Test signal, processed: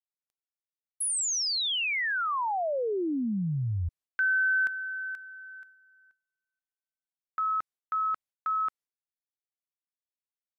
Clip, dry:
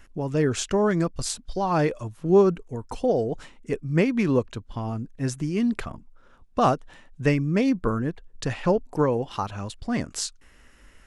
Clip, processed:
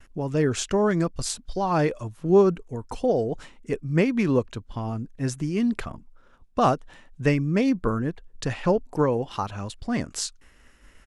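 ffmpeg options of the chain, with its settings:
ffmpeg -i in.wav -af "aresample=32000,aresample=44100,agate=range=-33dB:threshold=-50dB:ratio=3:detection=peak" -ar 48000 -c:a libmp3lame -b:a 256k out.mp3

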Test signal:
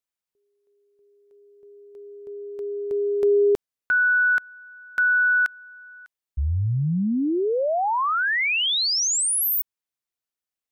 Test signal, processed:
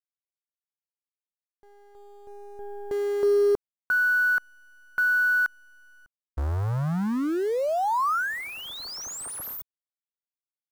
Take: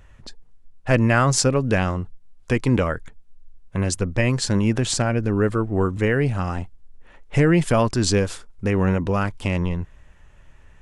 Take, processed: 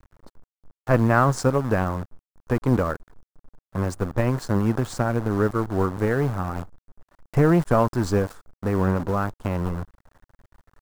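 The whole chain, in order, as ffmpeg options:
ffmpeg -i in.wav -af "aeval=exprs='0.794*(cos(1*acos(clip(val(0)/0.794,-1,1)))-cos(1*PI/2))+0.0447*(cos(7*acos(clip(val(0)/0.794,-1,1)))-cos(7*PI/2))':channel_layout=same,acrusher=bits=6:dc=4:mix=0:aa=0.000001,highshelf=frequency=1800:width_type=q:width=1.5:gain=-10" out.wav

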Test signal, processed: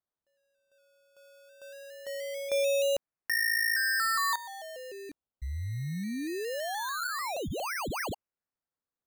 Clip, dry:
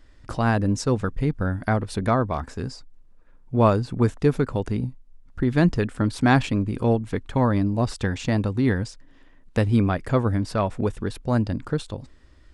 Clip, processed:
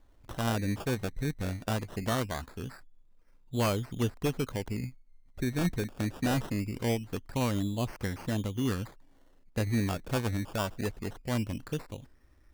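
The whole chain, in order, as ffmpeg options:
ffmpeg -i in.wav -af "acrusher=samples=17:mix=1:aa=0.000001:lfo=1:lforange=10.2:lforate=0.22,aeval=exprs='0.251*(abs(mod(val(0)/0.251+3,4)-2)-1)':channel_layout=same,volume=-9dB" out.wav

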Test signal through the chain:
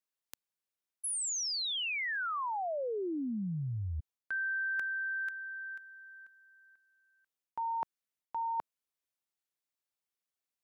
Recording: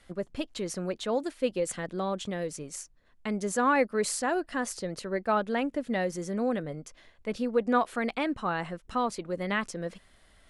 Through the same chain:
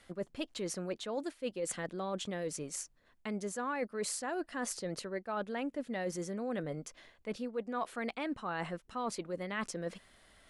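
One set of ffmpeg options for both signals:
ffmpeg -i in.wav -af "lowshelf=frequency=93:gain=-8.5,areverse,acompressor=threshold=-34dB:ratio=6,areverse" out.wav

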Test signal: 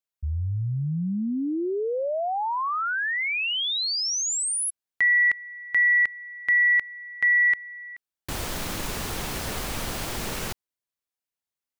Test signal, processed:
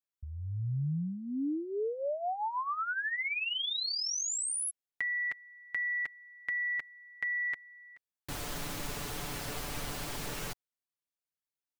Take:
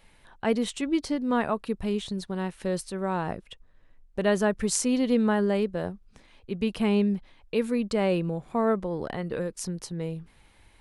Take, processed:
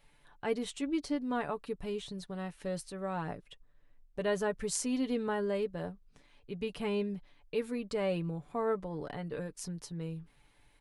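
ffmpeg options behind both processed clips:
ffmpeg -i in.wav -af "aecho=1:1:6.9:0.53,volume=-8.5dB" out.wav

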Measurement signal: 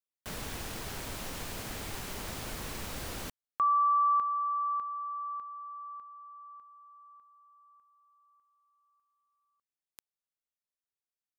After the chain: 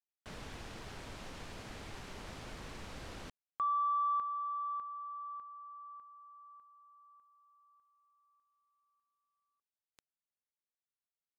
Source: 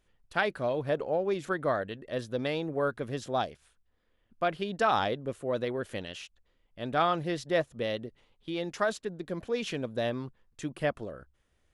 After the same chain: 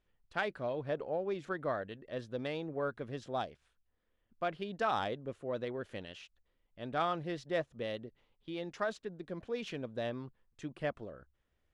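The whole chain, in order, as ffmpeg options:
ffmpeg -i in.wav -af "adynamicsmooth=sensitivity=3:basefreq=6000,volume=-6.5dB" out.wav

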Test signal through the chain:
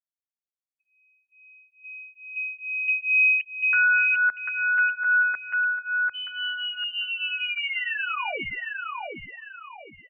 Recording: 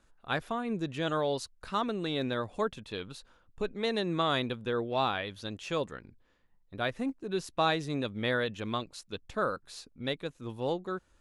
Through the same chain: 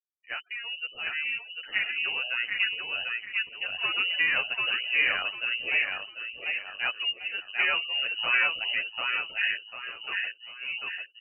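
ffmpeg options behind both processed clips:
ffmpeg -i in.wav -filter_complex "[0:a]highpass=frequency=140:poles=1,afftfilt=real='re*gte(hypot(re,im),0.00562)':imag='im*gte(hypot(re,im),0.00562)':win_size=1024:overlap=0.75,dynaudnorm=framelen=150:gausssize=21:maxgain=6dB,aecho=1:1:744|1488|2232|2976|3720:0.708|0.248|0.0867|0.0304|0.0106,lowpass=frequency=2600:width_type=q:width=0.5098,lowpass=frequency=2600:width_type=q:width=0.6013,lowpass=frequency=2600:width_type=q:width=0.9,lowpass=frequency=2600:width_type=q:width=2.563,afreqshift=-3100,asplit=2[link_01][link_02];[link_02]adelay=9.7,afreqshift=2.3[link_03];[link_01][link_03]amix=inputs=2:normalize=1" out.wav

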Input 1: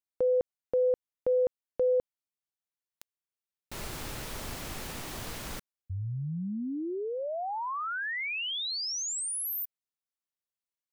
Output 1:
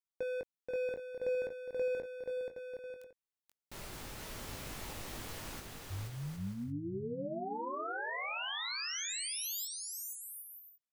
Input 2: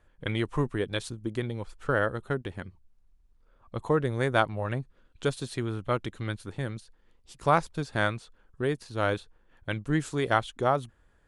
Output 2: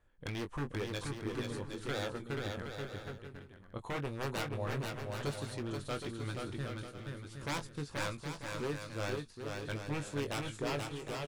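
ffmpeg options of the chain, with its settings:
ffmpeg -i in.wav -filter_complex "[0:a]aeval=exprs='0.0708*(abs(mod(val(0)/0.0708+3,4)-2)-1)':channel_layout=same,asplit=2[link_01][link_02];[link_02]adelay=21,volume=-8dB[link_03];[link_01][link_03]amix=inputs=2:normalize=0,aecho=1:1:480|768|940.8|1044|1107:0.631|0.398|0.251|0.158|0.1,volume=-8dB" out.wav

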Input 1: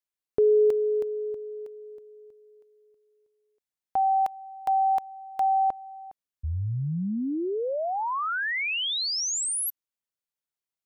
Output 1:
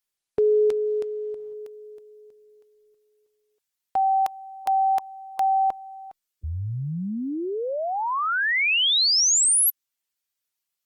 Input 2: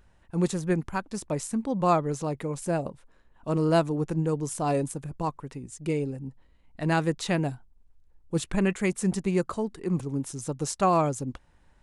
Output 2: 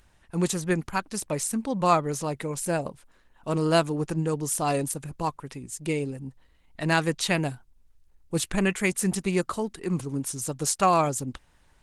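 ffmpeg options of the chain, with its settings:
ffmpeg -i in.wav -af "tiltshelf=frequency=1400:gain=-5,volume=4.5dB" -ar 48000 -c:a libopus -b:a 20k out.opus

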